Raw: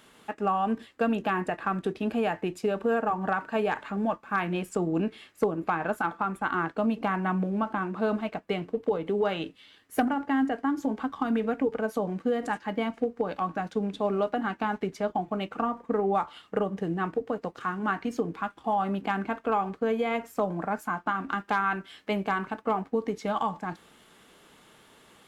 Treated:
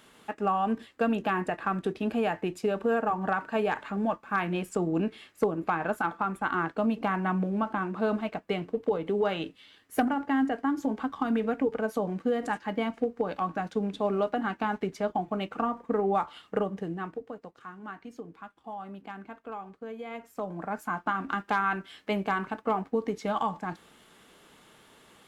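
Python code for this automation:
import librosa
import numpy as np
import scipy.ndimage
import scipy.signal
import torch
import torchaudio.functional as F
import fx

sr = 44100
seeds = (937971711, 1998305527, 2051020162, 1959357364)

y = fx.gain(x, sr, db=fx.line((16.58, -0.5), (17.57, -13.0), (19.93, -13.0), (20.97, -0.5)))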